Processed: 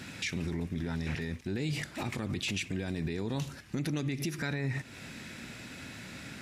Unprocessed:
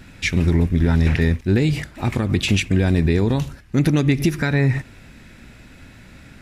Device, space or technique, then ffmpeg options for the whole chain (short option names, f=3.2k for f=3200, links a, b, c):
broadcast voice chain: -af "highpass=120,deesser=0.4,acompressor=threshold=-32dB:ratio=3,equalizer=f=5.8k:t=o:w=2.3:g=5.5,alimiter=level_in=0.5dB:limit=-24dB:level=0:latency=1:release=16,volume=-0.5dB"